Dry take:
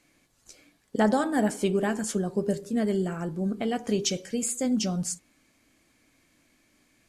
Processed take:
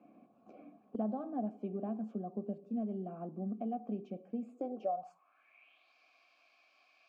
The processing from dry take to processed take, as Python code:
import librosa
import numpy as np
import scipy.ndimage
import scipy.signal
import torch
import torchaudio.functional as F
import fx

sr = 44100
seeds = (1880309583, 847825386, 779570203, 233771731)

y = fx.vowel_filter(x, sr, vowel='a')
y = fx.filter_sweep_bandpass(y, sr, from_hz=220.0, to_hz=4900.0, start_s=4.43, end_s=5.94, q=4.7)
y = fx.band_squash(y, sr, depth_pct=70)
y = F.gain(torch.from_numpy(y), 16.5).numpy()